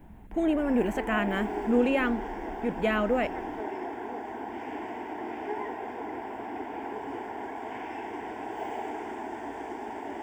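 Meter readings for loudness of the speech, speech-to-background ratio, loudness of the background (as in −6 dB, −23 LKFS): −28.5 LKFS, 8.0 dB, −36.5 LKFS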